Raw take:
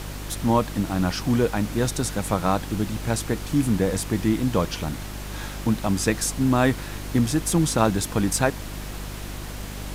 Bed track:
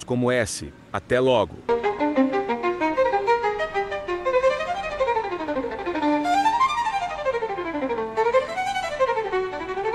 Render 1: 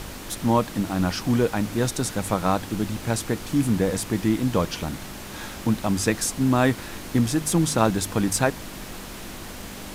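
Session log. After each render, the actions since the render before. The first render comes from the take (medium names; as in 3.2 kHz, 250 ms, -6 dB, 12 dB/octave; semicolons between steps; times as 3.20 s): de-hum 50 Hz, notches 3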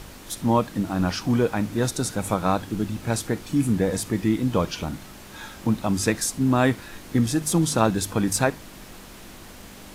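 noise print and reduce 6 dB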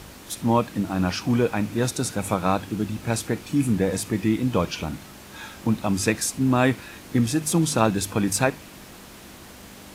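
high-pass 50 Hz; dynamic bell 2.5 kHz, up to +5 dB, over -52 dBFS, Q 4.6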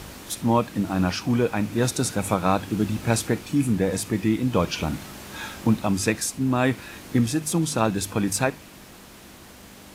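gain riding within 4 dB 0.5 s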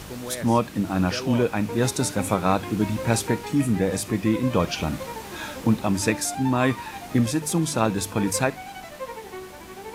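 add bed track -13.5 dB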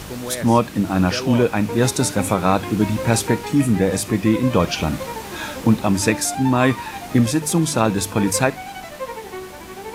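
trim +5 dB; peak limiter -3 dBFS, peak gain reduction 2.5 dB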